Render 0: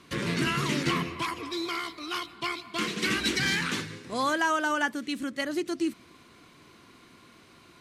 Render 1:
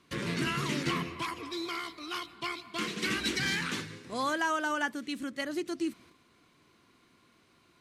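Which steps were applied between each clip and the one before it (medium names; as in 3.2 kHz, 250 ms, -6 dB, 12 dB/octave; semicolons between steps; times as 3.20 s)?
gate -51 dBFS, range -6 dB; trim -4 dB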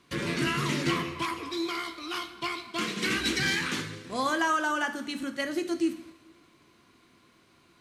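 two-slope reverb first 0.5 s, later 1.9 s, from -16 dB, DRR 7 dB; trim +2.5 dB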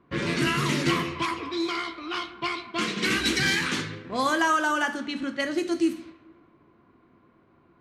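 level-controlled noise filter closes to 1.1 kHz, open at -25 dBFS; trim +3.5 dB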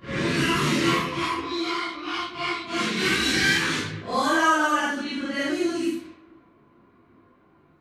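phase randomisation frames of 200 ms; trim +2.5 dB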